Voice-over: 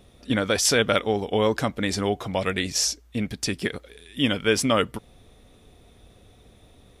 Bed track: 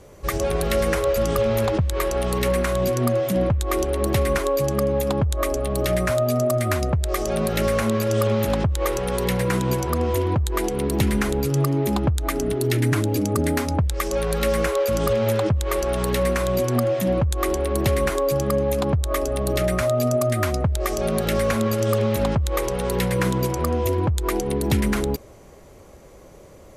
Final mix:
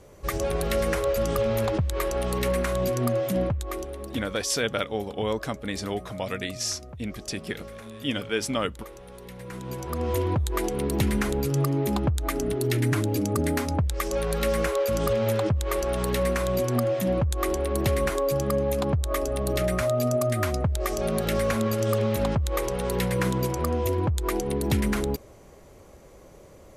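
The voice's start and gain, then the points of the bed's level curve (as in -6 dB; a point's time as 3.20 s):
3.85 s, -6.0 dB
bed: 3.39 s -4 dB
4.37 s -20.5 dB
9.31 s -20.5 dB
10.14 s -3.5 dB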